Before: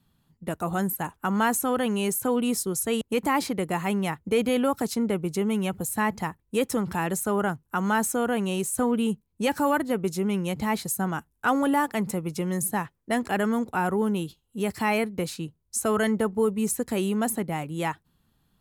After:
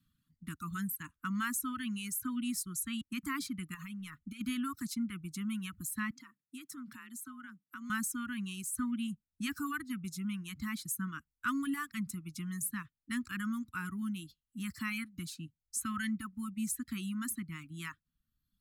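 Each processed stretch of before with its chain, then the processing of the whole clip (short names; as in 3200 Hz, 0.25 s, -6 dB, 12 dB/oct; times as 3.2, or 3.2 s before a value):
3.74–4.41 transient shaper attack 0 dB, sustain +4 dB + comb 4.8 ms, depth 36% + compressor 5:1, threshold -29 dBFS
6.11–7.9 HPF 130 Hz + compressor 2:1, threshold -38 dBFS + frequency shift +44 Hz
whole clip: reverb removal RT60 1.1 s; elliptic band-stop 280–1200 Hz, stop band 40 dB; gain -7.5 dB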